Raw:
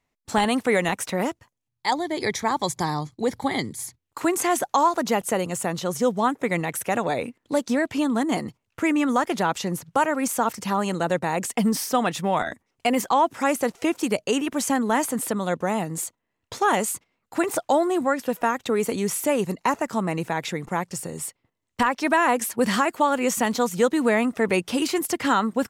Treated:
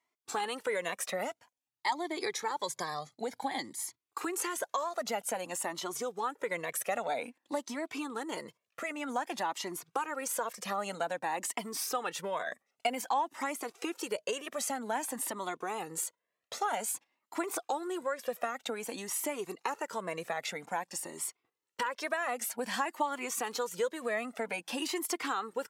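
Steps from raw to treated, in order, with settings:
downward compressor, threshold −24 dBFS, peak gain reduction 9.5 dB
high-pass filter 360 Hz 12 dB per octave
flanger whose copies keep moving one way rising 0.52 Hz

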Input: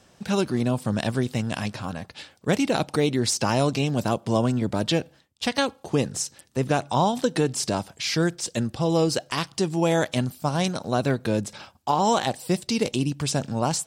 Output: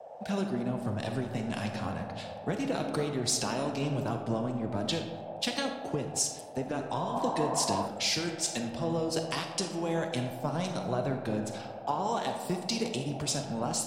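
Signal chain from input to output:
noise in a band 500–840 Hz −39 dBFS
downward compressor 10 to 1, threshold −27 dBFS, peak gain reduction 11.5 dB
flanger 1 Hz, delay 1.7 ms, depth 3.1 ms, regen −65%
comb and all-pass reverb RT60 2.2 s, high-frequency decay 0.45×, pre-delay 5 ms, DRR 3.5 dB
healed spectral selection 0:07.06–0:07.83, 540–1,600 Hz before
multiband upward and downward expander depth 70%
level +2.5 dB

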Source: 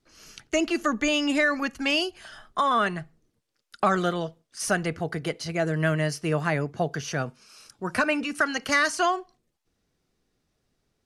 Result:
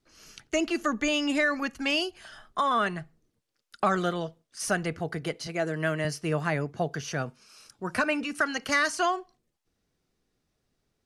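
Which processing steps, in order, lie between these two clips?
0:05.47–0:06.05: high-pass filter 190 Hz
level −2.5 dB

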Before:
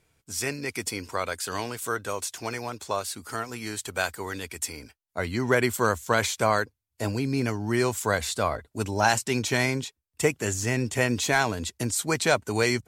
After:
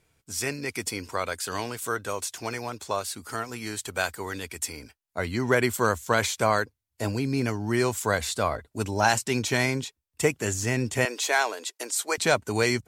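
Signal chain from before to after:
0:11.05–0:12.18: high-pass filter 410 Hz 24 dB per octave

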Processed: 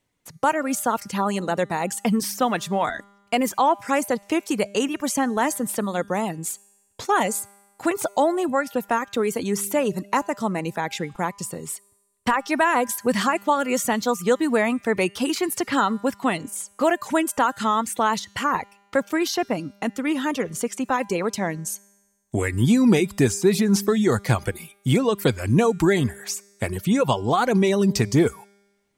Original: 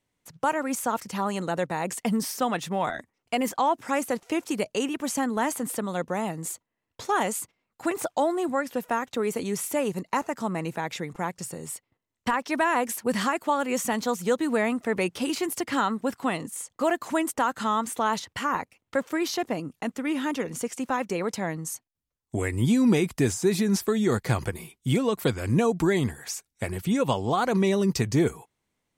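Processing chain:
reverb reduction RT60 0.54 s
tuned comb filter 200 Hz, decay 1.3 s, mix 40%
level +9 dB

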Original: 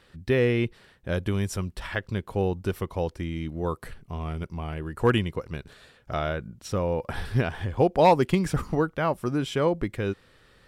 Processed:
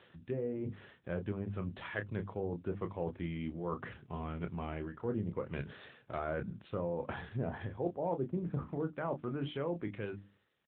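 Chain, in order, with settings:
fade-out on the ending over 1.90 s
treble cut that deepens with the level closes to 730 Hz, closed at −20.5 dBFS
mains-hum notches 50/100/150/200/250/300 Hz
reversed playback
downward compressor 4 to 1, threshold −36 dBFS, peak gain reduction 17 dB
reversed playback
double-tracking delay 29 ms −7.5 dB
level +1 dB
AMR narrowband 10.2 kbit/s 8,000 Hz

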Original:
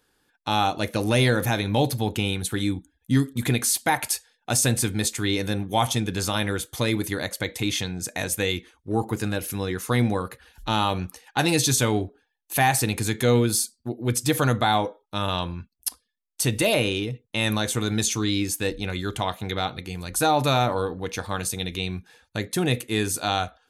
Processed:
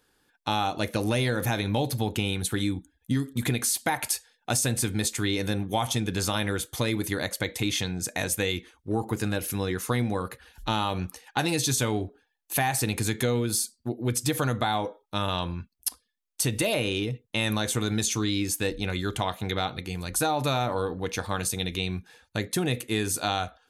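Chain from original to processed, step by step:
downward compressor, threshold −22 dBFS, peak gain reduction 7.5 dB

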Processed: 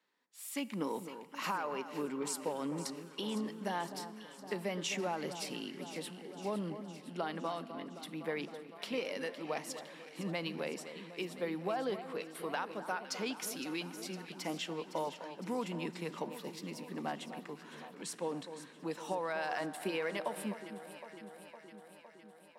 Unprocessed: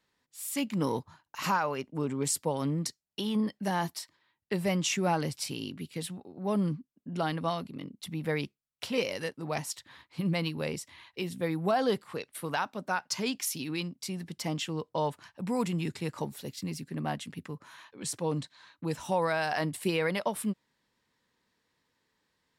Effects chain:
high-pass filter 190 Hz 24 dB per octave
bass and treble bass −5 dB, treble −6 dB
downward compressor, threshold −30 dBFS, peak gain reduction 7 dB
delay that swaps between a low-pass and a high-pass 255 ms, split 1,500 Hz, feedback 82%, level −10.5 dB
four-comb reverb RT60 3.1 s, combs from 27 ms, DRR 18 dB
level −2.5 dB

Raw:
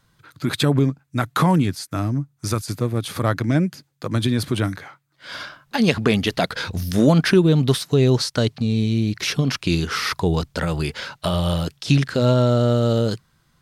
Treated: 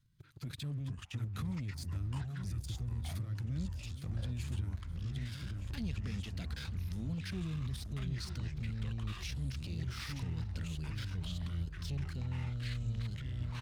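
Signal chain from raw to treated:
drawn EQ curve 120 Hz 0 dB, 730 Hz −26 dB, 2,400 Hz −12 dB
output level in coarse steps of 9 dB
leveller curve on the samples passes 2
repeating echo 917 ms, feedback 42%, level −22 dB
downward compressor 3 to 1, threshold −41 dBFS, peak gain reduction 18.5 dB
brickwall limiter −37.5 dBFS, peak gain reduction 10 dB
delay with pitch and tempo change per echo 311 ms, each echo −5 semitones, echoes 3
level +3 dB

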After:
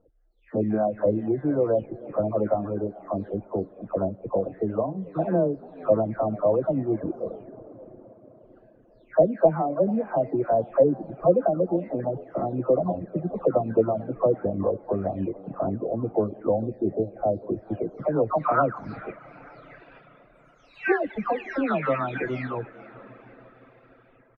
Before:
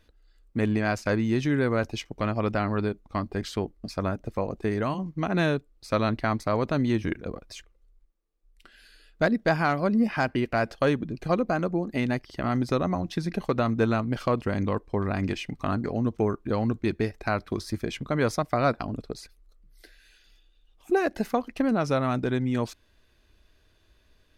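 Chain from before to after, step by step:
every frequency bin delayed by itself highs early, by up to 504 ms
on a send at −12.5 dB: high-pass filter 86 Hz 24 dB per octave + convolution reverb RT60 5.5 s, pre-delay 33 ms
on the sum: reverb reduction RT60 0.98 s
echo with shifted repeats 444 ms, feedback 38%, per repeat +85 Hz, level −21 dB
low-pass filter sweep 600 Hz → 2,200 Hz, 0:18.06–0:19.06
low-shelf EQ 120 Hz −7 dB
gain on a spectral selection 0:16.59–0:17.42, 840–3,500 Hz −11 dB
high-frequency loss of the air 52 metres
level +2 dB

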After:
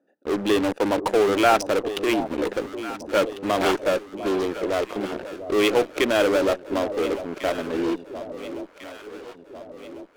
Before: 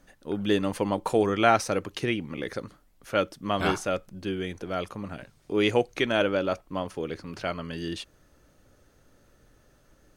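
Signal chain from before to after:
adaptive Wiener filter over 41 samples
high-pass filter 290 Hz 24 dB per octave
in parallel at −10 dB: fuzz pedal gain 42 dB, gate −49 dBFS
on the sum: delay that swaps between a low-pass and a high-pass 699 ms, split 850 Hz, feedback 71%, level −10.5 dB

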